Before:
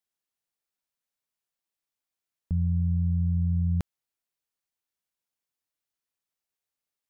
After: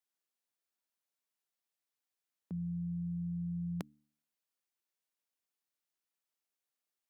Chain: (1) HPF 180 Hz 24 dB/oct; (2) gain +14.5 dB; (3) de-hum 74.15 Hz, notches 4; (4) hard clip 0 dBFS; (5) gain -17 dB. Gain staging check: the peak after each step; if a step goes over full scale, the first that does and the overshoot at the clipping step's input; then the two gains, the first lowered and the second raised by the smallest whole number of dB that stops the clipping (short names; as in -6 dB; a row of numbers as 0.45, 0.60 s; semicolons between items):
-19.5, -5.0, -5.0, -5.0, -22.0 dBFS; no overload